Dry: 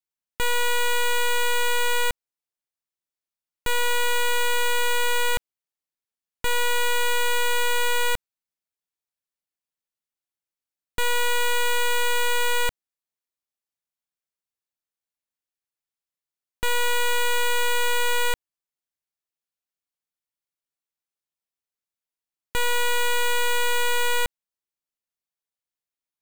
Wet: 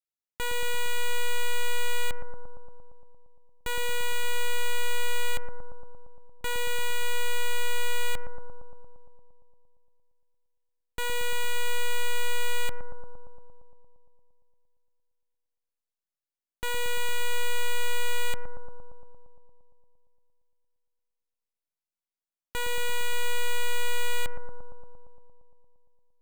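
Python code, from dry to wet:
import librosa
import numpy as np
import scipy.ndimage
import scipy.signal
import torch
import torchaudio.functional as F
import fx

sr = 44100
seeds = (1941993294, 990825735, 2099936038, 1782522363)

y = fx.echo_bbd(x, sr, ms=115, stages=1024, feedback_pct=75, wet_db=-5)
y = y * 10.0 ** (-7.0 / 20.0)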